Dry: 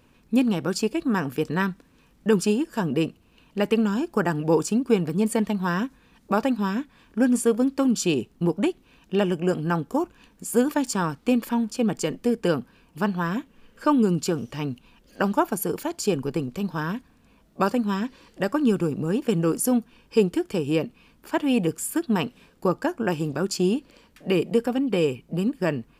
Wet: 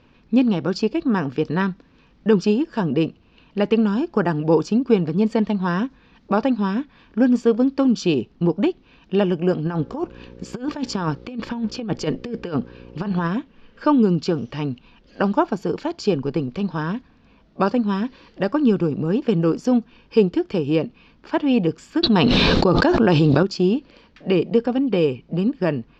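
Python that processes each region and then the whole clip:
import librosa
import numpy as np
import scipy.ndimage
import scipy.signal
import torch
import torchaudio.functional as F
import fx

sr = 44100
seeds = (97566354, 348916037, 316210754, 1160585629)

y = fx.dmg_buzz(x, sr, base_hz=60.0, harmonics=9, level_db=-51.0, tilt_db=-1, odd_only=False, at=(9.65, 13.26), fade=0.02)
y = fx.over_compress(y, sr, threshold_db=-26.0, ratio=-0.5, at=(9.65, 13.26), fade=0.02)
y = fx.chain(y, sr, fx.peak_eq(hz=4000.0, db=10.5, octaves=0.42),
    fx.notch(hz=4800.0, q=26.0),
    fx.env_flatten(amount_pct=100), at=(22.03, 23.43))
y = scipy.signal.sosfilt(scipy.signal.cheby2(4, 40, 9200.0, 'lowpass', fs=sr, output='sos'), y)
y = fx.dynamic_eq(y, sr, hz=2000.0, q=0.75, threshold_db=-39.0, ratio=4.0, max_db=-4)
y = F.gain(torch.from_numpy(y), 4.0).numpy()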